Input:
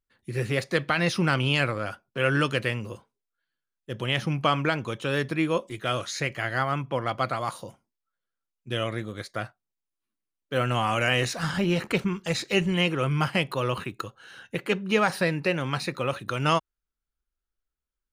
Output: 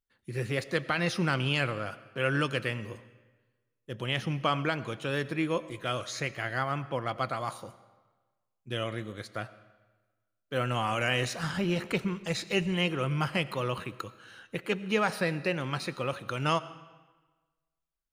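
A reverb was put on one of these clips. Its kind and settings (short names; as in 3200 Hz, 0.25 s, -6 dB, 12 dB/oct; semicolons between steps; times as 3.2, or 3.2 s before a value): digital reverb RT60 1.3 s, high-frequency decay 0.85×, pre-delay 50 ms, DRR 16.5 dB; gain -4.5 dB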